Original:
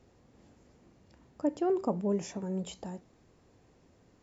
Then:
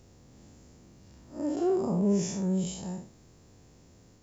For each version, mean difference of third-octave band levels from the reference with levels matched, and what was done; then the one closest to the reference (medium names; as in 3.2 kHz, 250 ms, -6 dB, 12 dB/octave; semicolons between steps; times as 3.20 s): 3.5 dB: spectral blur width 143 ms; tone controls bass +6 dB, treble +11 dB; trim +4 dB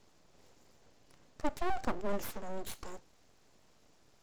8.0 dB: peaking EQ 4.9 kHz +8.5 dB 1.9 oct; full-wave rectifier; trim -1.5 dB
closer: first